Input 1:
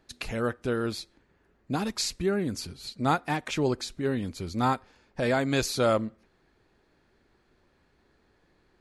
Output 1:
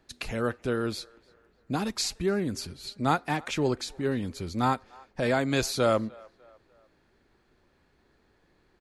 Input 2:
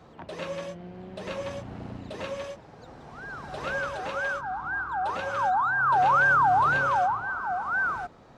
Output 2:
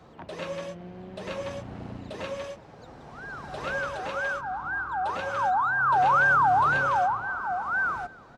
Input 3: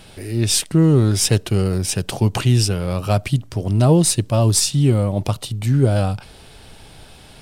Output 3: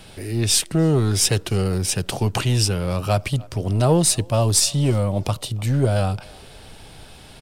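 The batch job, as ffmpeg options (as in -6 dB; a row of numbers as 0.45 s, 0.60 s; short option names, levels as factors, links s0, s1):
-filter_complex "[0:a]acrossover=split=390[s0][s1];[s0]asoftclip=type=tanh:threshold=0.158[s2];[s1]asplit=2[s3][s4];[s4]adelay=299,lowpass=f=2600:p=1,volume=0.0708,asplit=2[s5][s6];[s6]adelay=299,lowpass=f=2600:p=1,volume=0.47,asplit=2[s7][s8];[s8]adelay=299,lowpass=f=2600:p=1,volume=0.47[s9];[s3][s5][s7][s9]amix=inputs=4:normalize=0[s10];[s2][s10]amix=inputs=2:normalize=0"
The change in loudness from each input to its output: 0.0 LU, 0.0 LU, -2.5 LU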